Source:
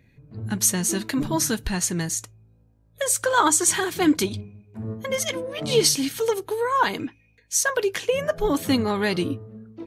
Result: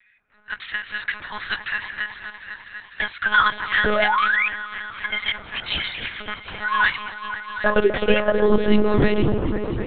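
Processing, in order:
in parallel at −8 dB: hard clipping −20 dBFS, distortion −9 dB
on the sum: high-pass filter sweep 1,600 Hz → 81 Hz, 0:06.88–0:09.34
echo whose low-pass opens from repeat to repeat 251 ms, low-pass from 750 Hz, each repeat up 1 octave, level −6 dB
sound drawn into the spectrogram rise, 0:03.85–0:04.48, 410–2,600 Hz −20 dBFS
one-pitch LPC vocoder at 8 kHz 210 Hz

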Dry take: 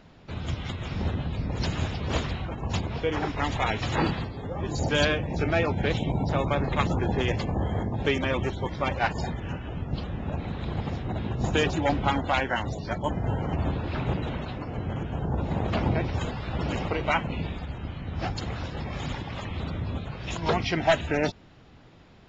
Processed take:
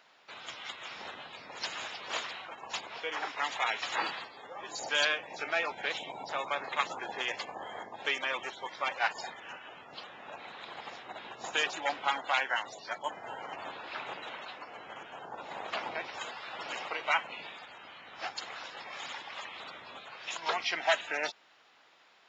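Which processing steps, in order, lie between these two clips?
high-pass filter 930 Hz 12 dB per octave
level −1 dB

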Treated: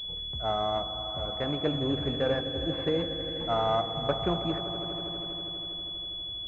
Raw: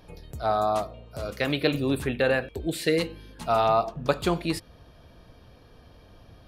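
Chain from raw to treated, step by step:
low-shelf EQ 110 Hz +5 dB
echo that builds up and dies away 81 ms, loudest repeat 5, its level −16 dB
switching amplifier with a slow clock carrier 3,400 Hz
level −5 dB

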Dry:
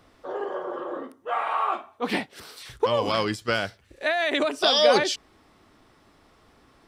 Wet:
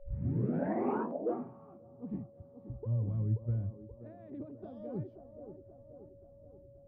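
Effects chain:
turntable start at the beginning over 1.24 s
on a send: delay with a band-pass on its return 530 ms, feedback 53%, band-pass 530 Hz, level −7 dB
on the sum: low-pass filter sweep 2,000 Hz → 120 Hz, 0:00.92–0:01.54
steady tone 560 Hz −56 dBFS

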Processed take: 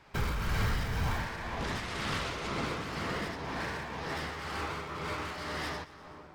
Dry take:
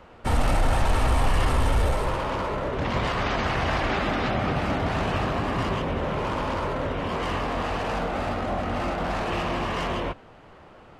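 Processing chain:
wrong playback speed 45 rpm record played at 78 rpm
echo with a time of its own for lows and highs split 1,300 Hz, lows 696 ms, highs 122 ms, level −13 dB
shaped tremolo triangle 2 Hz, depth 50%
level −8 dB

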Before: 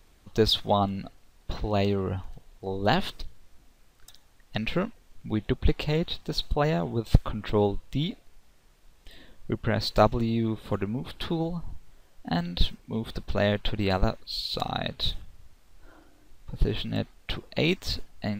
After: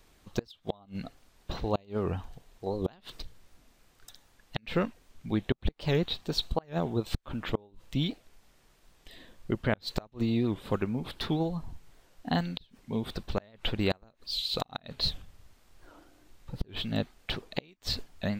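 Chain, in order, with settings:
low-shelf EQ 81 Hz −6.5 dB
gate with flip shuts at −15 dBFS, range −32 dB
wow of a warped record 78 rpm, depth 160 cents

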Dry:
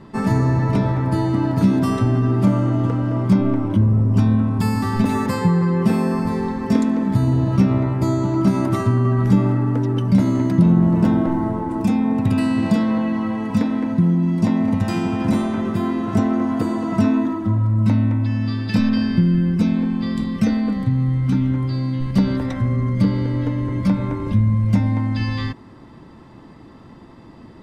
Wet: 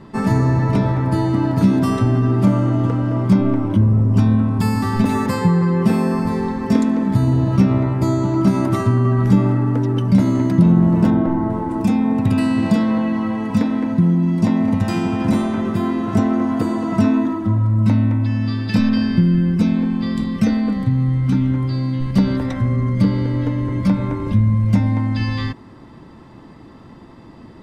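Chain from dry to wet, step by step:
0:11.10–0:11.50: high-shelf EQ 3,500 Hz −10.5 dB
level +1.5 dB

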